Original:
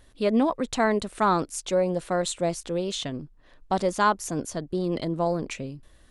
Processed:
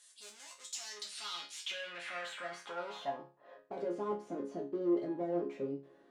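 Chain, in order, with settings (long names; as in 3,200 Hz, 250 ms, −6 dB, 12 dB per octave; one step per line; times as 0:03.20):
mid-hump overdrive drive 35 dB, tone 6,900 Hz, clips at −9.5 dBFS
band-pass filter sweep 7,700 Hz → 360 Hz, 0:00.59–0:03.96
resonators tuned to a chord C#3 major, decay 0.32 s
level +1 dB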